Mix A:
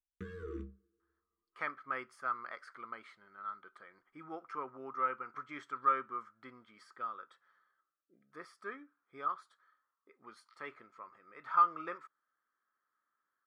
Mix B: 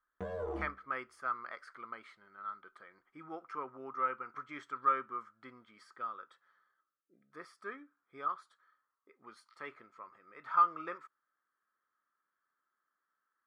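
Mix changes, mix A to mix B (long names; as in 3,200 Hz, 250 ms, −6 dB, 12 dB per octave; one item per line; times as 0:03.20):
speech: entry −1.00 s
background: remove Chebyshev band-stop filter 440–1,200 Hz, order 4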